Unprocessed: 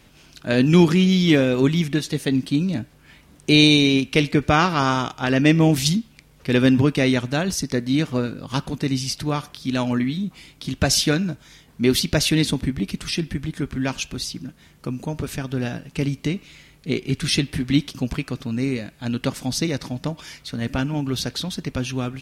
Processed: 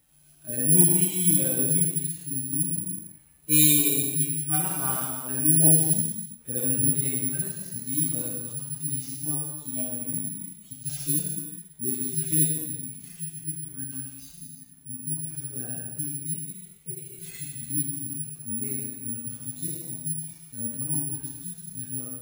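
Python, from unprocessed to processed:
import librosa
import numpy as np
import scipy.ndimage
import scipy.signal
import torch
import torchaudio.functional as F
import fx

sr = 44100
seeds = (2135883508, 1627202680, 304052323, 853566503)

y = fx.hpss_only(x, sr, part='harmonic')
y = fx.high_shelf(y, sr, hz=3900.0, db=11.5, at=(7.64, 8.84))
y = fx.rev_gated(y, sr, seeds[0], gate_ms=440, shape='falling', drr_db=-3.0)
y = (np.kron(y[::4], np.eye(4)[0]) * 4)[:len(y)]
y = y * librosa.db_to_amplitude(-16.5)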